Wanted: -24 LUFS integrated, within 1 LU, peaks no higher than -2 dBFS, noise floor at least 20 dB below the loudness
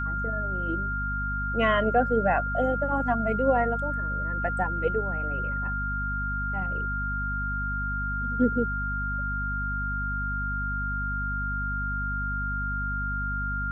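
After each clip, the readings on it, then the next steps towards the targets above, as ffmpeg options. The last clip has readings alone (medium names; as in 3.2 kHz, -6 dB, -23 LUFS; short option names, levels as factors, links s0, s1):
hum 50 Hz; highest harmonic 250 Hz; hum level -29 dBFS; steady tone 1.4 kHz; tone level -29 dBFS; loudness -28.0 LUFS; peak level -10.0 dBFS; loudness target -24.0 LUFS
-> -af "bandreject=f=50:t=h:w=4,bandreject=f=100:t=h:w=4,bandreject=f=150:t=h:w=4,bandreject=f=200:t=h:w=4,bandreject=f=250:t=h:w=4"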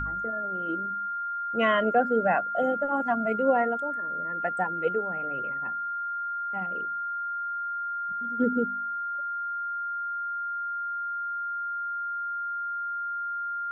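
hum not found; steady tone 1.4 kHz; tone level -29 dBFS
-> -af "bandreject=f=1400:w=30"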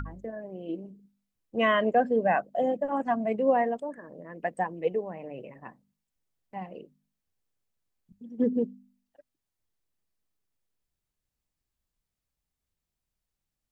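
steady tone not found; loudness -28.5 LUFS; peak level -11.5 dBFS; loudness target -24.0 LUFS
-> -af "volume=1.68"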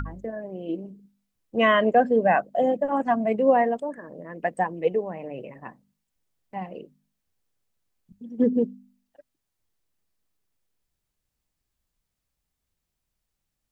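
loudness -24.0 LUFS; peak level -7.0 dBFS; noise floor -82 dBFS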